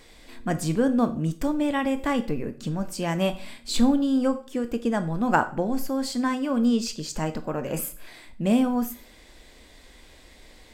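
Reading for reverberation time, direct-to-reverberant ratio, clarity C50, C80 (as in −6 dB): 0.45 s, 10.0 dB, 15.5 dB, 19.5 dB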